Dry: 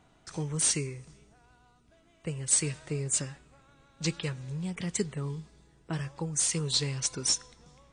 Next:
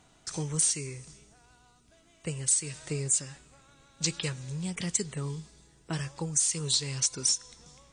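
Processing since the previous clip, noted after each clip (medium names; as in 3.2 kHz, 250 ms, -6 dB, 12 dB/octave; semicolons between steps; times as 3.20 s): peaking EQ 7.5 kHz +10.5 dB 2 oct; compression 6:1, threshold -24 dBFS, peak gain reduction 13.5 dB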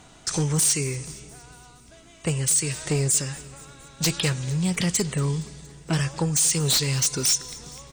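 in parallel at -5 dB: sine folder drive 14 dB, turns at -11 dBFS; on the sum: feedback delay 233 ms, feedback 60%, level -21.5 dB; trim -3.5 dB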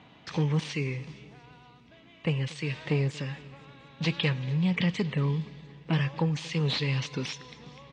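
cabinet simulation 130–3300 Hz, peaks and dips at 370 Hz -7 dB, 680 Hz -6 dB, 1.4 kHz -9 dB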